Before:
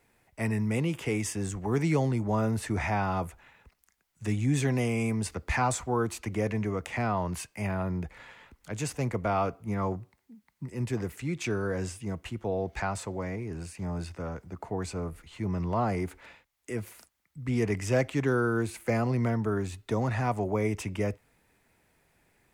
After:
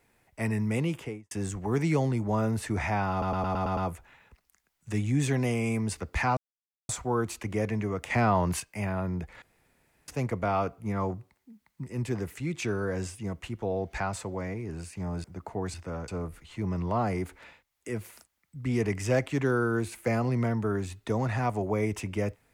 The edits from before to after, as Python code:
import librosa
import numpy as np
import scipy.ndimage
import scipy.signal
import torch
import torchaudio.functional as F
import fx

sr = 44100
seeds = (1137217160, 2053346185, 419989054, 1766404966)

y = fx.studio_fade_out(x, sr, start_s=0.88, length_s=0.43)
y = fx.edit(y, sr, fx.stutter(start_s=3.11, slice_s=0.11, count=7),
    fx.insert_silence(at_s=5.71, length_s=0.52),
    fx.clip_gain(start_s=6.92, length_s=0.5, db=5.0),
    fx.room_tone_fill(start_s=8.24, length_s=0.66),
    fx.move(start_s=14.06, length_s=0.34, to_s=14.9), tone=tone)